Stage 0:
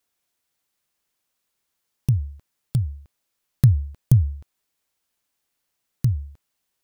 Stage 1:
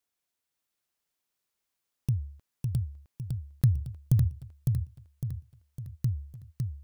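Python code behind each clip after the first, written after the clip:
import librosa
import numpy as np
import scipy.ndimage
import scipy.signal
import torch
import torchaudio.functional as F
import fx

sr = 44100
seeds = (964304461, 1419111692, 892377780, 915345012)

y = fx.echo_feedback(x, sr, ms=556, feedback_pct=47, wet_db=-4.0)
y = y * librosa.db_to_amplitude(-8.0)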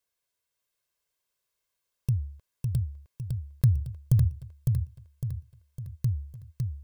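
y = x + 0.53 * np.pad(x, (int(1.9 * sr / 1000.0), 0))[:len(x)]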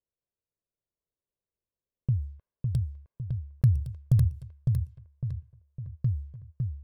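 y = fx.env_lowpass(x, sr, base_hz=440.0, full_db=-24.5)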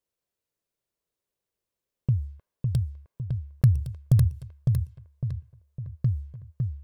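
y = fx.low_shelf(x, sr, hz=150.0, db=-6.5)
y = y * librosa.db_to_amplitude(6.5)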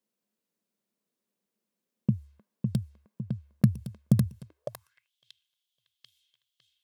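y = fx.filter_sweep_highpass(x, sr, from_hz=210.0, to_hz=3300.0, start_s=4.42, end_s=5.11, q=7.4)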